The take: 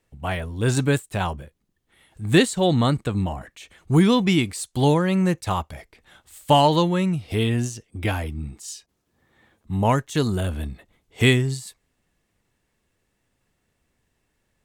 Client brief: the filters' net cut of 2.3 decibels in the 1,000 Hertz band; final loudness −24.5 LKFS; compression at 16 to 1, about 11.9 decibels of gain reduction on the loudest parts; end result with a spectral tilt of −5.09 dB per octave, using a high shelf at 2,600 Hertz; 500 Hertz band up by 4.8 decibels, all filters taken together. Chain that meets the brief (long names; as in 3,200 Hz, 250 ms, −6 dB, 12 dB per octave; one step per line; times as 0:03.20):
parametric band 500 Hz +7.5 dB
parametric band 1,000 Hz −7 dB
high-shelf EQ 2,600 Hz +5.5 dB
downward compressor 16 to 1, threshold −21 dBFS
level +3 dB